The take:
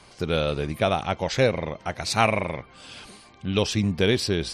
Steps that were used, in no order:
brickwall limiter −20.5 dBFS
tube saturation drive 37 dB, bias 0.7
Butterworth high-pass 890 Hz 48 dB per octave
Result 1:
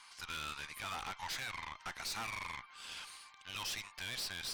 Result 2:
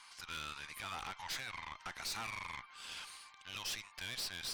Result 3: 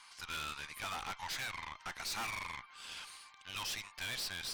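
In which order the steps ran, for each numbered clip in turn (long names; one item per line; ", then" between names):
Butterworth high-pass, then brickwall limiter, then tube saturation
brickwall limiter, then Butterworth high-pass, then tube saturation
Butterworth high-pass, then tube saturation, then brickwall limiter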